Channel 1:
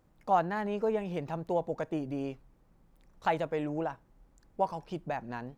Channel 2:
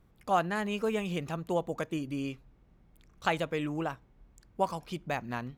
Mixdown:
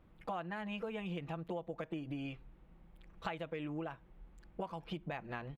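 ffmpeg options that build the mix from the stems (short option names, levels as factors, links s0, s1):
-filter_complex "[0:a]volume=0.841[s0];[1:a]highshelf=f=12000:g=-4.5,adelay=5.5,volume=0.794,asplit=2[s1][s2];[s2]apad=whole_len=245637[s3];[s0][s3]sidechaincompress=threshold=0.0158:ratio=8:attack=16:release=150[s4];[s4][s1]amix=inputs=2:normalize=0,highshelf=f=4200:t=q:w=1.5:g=-9.5,acompressor=threshold=0.0126:ratio=6"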